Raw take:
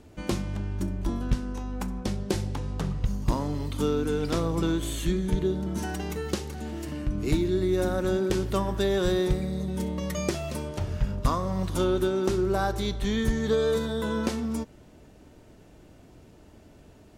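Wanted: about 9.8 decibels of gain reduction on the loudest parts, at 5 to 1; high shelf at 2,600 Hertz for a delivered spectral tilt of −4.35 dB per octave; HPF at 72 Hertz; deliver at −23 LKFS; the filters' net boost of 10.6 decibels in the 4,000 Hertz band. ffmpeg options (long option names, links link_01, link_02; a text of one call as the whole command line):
ffmpeg -i in.wav -af "highpass=72,highshelf=frequency=2600:gain=7,equalizer=frequency=4000:width_type=o:gain=7,acompressor=threshold=-32dB:ratio=5,volume=12dB" out.wav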